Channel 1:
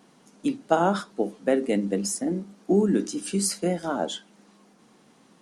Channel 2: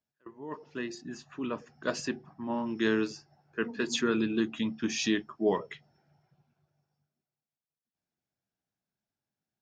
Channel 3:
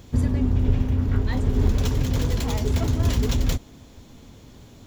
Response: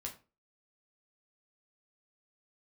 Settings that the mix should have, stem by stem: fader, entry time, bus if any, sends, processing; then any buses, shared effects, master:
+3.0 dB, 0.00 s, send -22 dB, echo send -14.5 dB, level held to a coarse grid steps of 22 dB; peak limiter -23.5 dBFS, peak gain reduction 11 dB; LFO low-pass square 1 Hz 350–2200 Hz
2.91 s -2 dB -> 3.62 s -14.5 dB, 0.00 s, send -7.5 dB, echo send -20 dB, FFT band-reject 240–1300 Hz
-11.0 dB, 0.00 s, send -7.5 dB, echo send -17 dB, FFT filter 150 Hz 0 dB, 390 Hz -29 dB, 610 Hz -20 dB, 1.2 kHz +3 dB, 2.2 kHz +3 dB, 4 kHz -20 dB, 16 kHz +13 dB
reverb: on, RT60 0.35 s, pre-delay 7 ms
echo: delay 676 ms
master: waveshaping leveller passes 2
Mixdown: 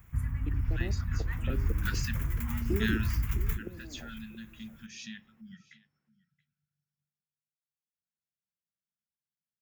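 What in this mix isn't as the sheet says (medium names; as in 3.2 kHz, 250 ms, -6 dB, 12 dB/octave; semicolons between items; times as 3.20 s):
stem 1 +3.0 dB -> -8.5 dB; master: missing waveshaping leveller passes 2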